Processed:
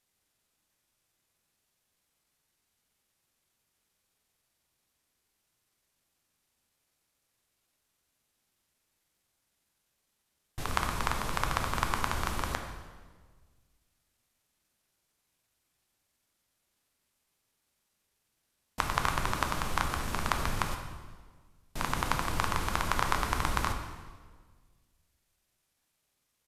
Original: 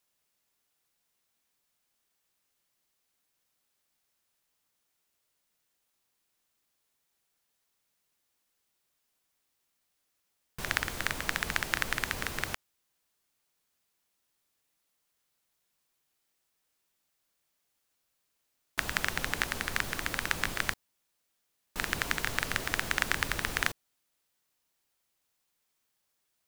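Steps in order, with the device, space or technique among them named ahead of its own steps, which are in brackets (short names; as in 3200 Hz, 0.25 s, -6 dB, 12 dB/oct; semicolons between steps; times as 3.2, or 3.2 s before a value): monster voice (pitch shift -5.5 st; formant shift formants -2 st; low shelf 200 Hz +7.5 dB; reverb RT60 1.6 s, pre-delay 8 ms, DRR 4 dB); gain -1 dB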